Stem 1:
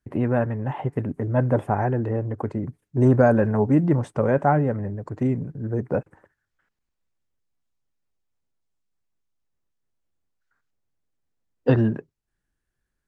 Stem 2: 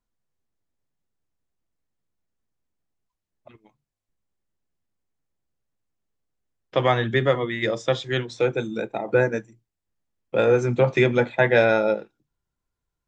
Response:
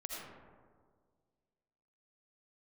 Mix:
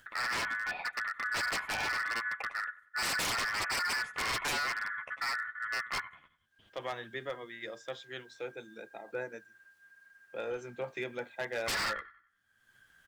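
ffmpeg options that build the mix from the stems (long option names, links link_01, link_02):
-filter_complex "[0:a]acompressor=mode=upward:threshold=-35dB:ratio=2.5,aeval=exprs='val(0)*sin(2*PI*1600*n/s)':channel_layout=same,flanger=delay=8.2:depth=5.2:regen=-12:speed=0.87:shape=sinusoidal,volume=-2dB,asplit=2[link_01][link_02];[link_02]volume=-18dB[link_03];[1:a]highpass=frequency=540:poles=1,volume=-15.5dB[link_04];[link_03]aecho=0:1:93|186|279|372|465:1|0.36|0.13|0.0467|0.0168[link_05];[link_01][link_04][link_05]amix=inputs=3:normalize=0,aeval=exprs='0.0422*(abs(mod(val(0)/0.0422+3,4)-2)-1)':channel_layout=same"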